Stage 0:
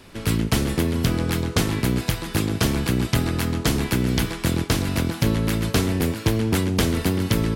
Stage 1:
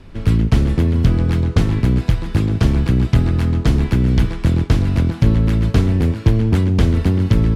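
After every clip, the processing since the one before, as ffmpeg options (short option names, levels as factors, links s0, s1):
-af "aemphasis=mode=reproduction:type=bsi,volume=0.891"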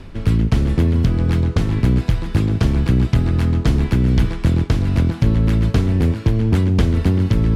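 -af "alimiter=limit=0.531:level=0:latency=1:release=243,areverse,acompressor=mode=upward:threshold=0.158:ratio=2.5,areverse"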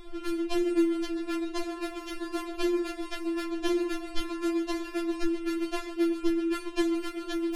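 -af "afftfilt=real='re*4*eq(mod(b,16),0)':imag='im*4*eq(mod(b,16),0)':win_size=2048:overlap=0.75,volume=0.75"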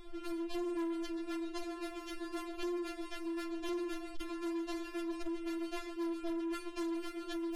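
-af "asoftclip=type=tanh:threshold=0.0398,volume=0.531"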